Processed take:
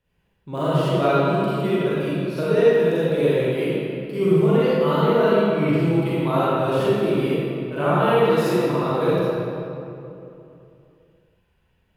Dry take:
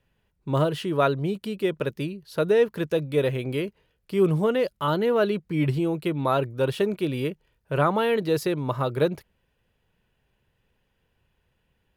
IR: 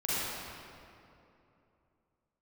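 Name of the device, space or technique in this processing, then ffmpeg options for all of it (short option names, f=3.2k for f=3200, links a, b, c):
stairwell: -filter_complex "[1:a]atrim=start_sample=2205[a];[0:a][a]afir=irnorm=-1:irlink=0,volume=-4.5dB"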